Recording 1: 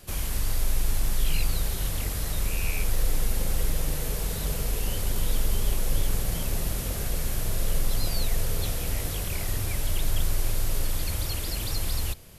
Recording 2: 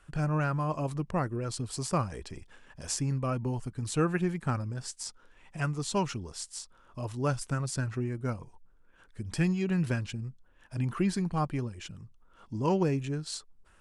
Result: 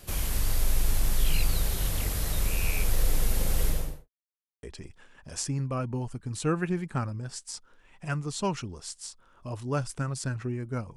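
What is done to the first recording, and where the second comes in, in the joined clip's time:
recording 1
3.65–4.09 s: studio fade out
4.09–4.63 s: mute
4.63 s: go over to recording 2 from 2.15 s

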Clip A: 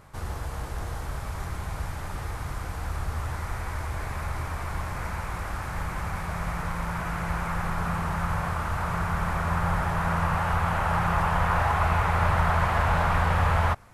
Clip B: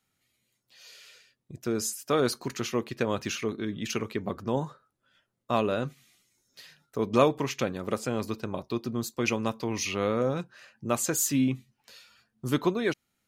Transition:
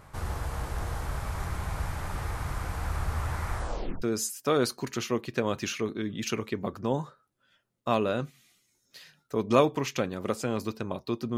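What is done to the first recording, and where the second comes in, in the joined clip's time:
clip A
3.52 s: tape stop 0.50 s
4.02 s: go over to clip B from 1.65 s

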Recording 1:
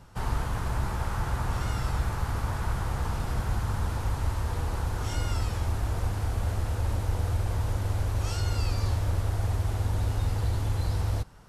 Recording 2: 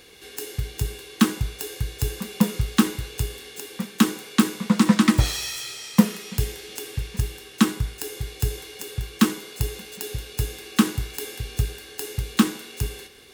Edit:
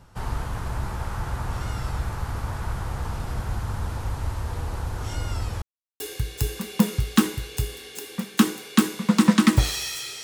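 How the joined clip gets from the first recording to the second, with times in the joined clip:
recording 1
5.62–6.00 s: mute
6.00 s: go over to recording 2 from 1.61 s

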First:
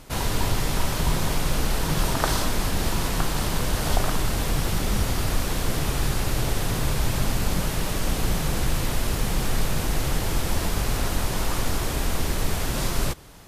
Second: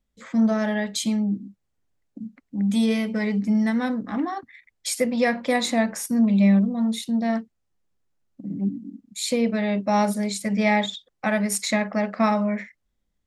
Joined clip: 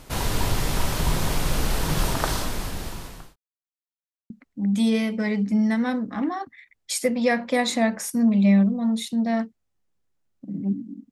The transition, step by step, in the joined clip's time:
first
2.02–3.36 s: fade out linear
3.36–4.30 s: mute
4.30 s: go over to second from 2.26 s

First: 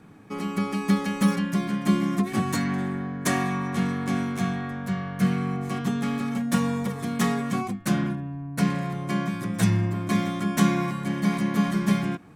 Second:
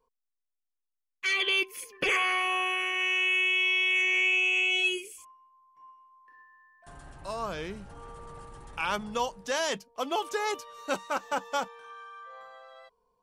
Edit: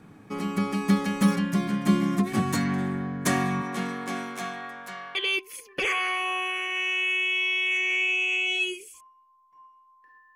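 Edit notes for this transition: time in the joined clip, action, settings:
first
3.61–5.15 s: high-pass 240 Hz -> 860 Hz
5.15 s: go over to second from 1.39 s

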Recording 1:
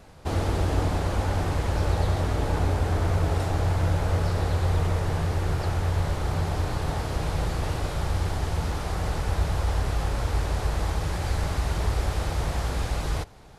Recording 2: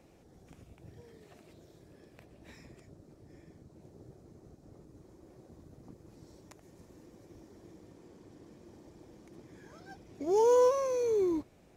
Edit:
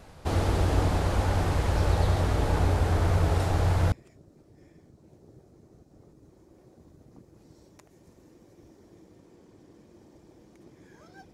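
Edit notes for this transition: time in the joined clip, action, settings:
recording 1
3.92 s: go over to recording 2 from 2.64 s

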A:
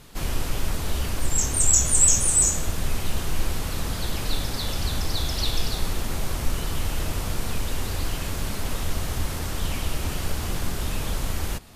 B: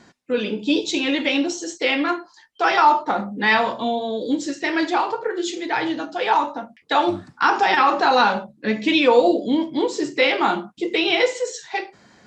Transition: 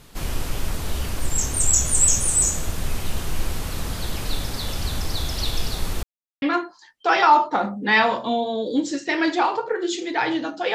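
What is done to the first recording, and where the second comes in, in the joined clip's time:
A
6.03–6.42 s: mute
6.42 s: go over to B from 1.97 s

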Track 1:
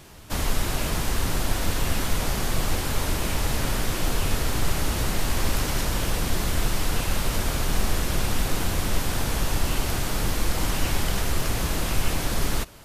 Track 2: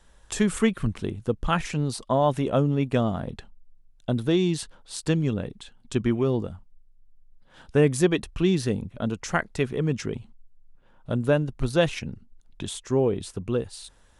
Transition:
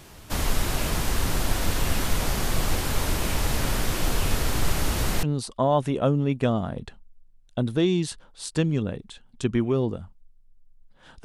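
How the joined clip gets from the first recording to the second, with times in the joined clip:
track 1
5.23 s: go over to track 2 from 1.74 s

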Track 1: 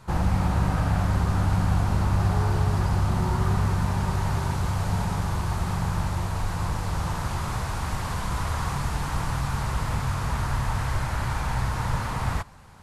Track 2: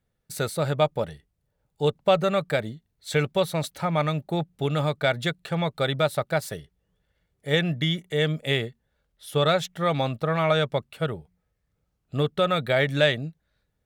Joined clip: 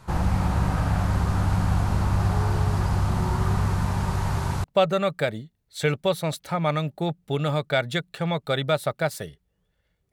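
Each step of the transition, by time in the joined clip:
track 1
4.64 s: go over to track 2 from 1.95 s

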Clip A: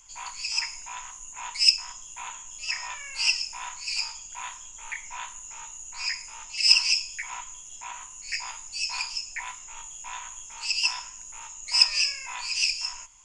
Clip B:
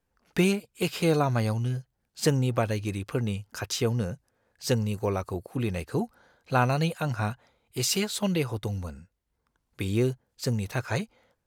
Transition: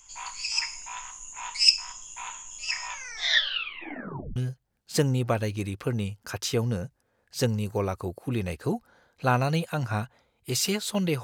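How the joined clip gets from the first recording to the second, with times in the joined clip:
clip A
2.90 s: tape stop 1.46 s
4.36 s: go over to clip B from 1.64 s

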